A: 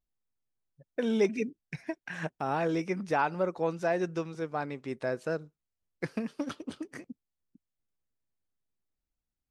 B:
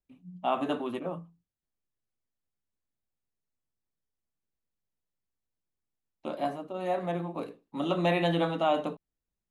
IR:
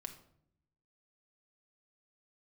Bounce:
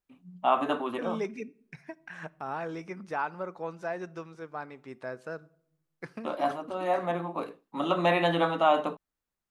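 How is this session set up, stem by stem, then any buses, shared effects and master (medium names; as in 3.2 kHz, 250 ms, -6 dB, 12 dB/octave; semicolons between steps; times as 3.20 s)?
-10.5 dB, 0.00 s, send -7.5 dB, none
+0.5 dB, 0.00 s, no send, bass shelf 130 Hz -9 dB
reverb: on, RT60 0.70 s, pre-delay 5 ms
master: peaking EQ 1.2 kHz +7 dB 1.4 oct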